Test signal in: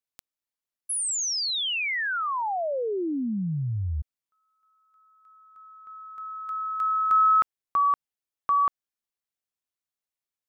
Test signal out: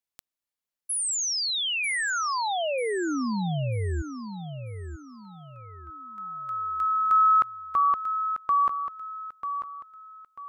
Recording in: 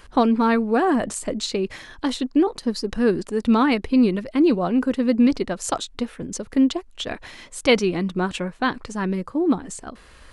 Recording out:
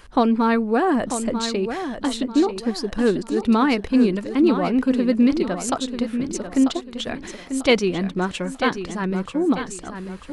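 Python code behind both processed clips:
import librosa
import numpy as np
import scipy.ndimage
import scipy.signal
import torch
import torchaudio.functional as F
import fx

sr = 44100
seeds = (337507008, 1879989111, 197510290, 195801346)

y = fx.echo_feedback(x, sr, ms=942, feedback_pct=34, wet_db=-9.0)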